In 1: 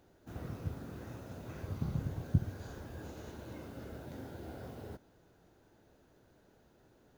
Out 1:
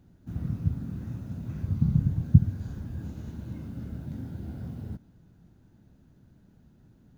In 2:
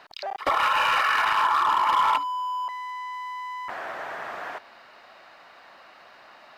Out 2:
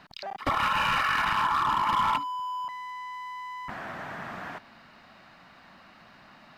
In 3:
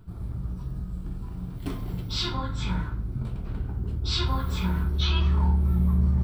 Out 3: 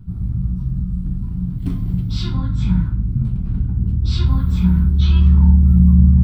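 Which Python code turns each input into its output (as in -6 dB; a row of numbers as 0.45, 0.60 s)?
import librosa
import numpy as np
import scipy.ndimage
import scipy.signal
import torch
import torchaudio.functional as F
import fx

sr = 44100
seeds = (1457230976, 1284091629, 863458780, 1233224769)

y = fx.low_shelf_res(x, sr, hz=300.0, db=13.5, q=1.5)
y = y * librosa.db_to_amplitude(-3.0)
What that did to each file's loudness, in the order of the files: +11.5, -3.5, +11.0 LU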